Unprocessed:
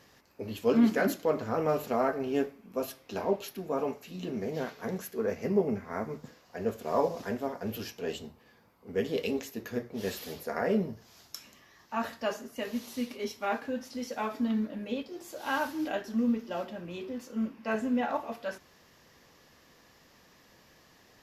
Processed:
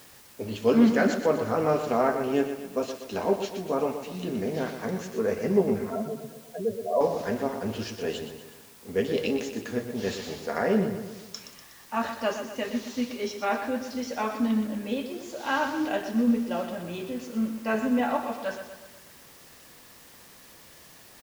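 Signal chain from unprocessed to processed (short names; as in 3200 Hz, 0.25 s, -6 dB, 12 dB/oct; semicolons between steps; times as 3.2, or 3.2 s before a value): 5.9–7.01 spectral contrast raised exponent 3.6; feedback echo 0.122 s, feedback 51%, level -9 dB; downsampling 16000 Hz; in parallel at -5 dB: requantised 8-bit, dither triangular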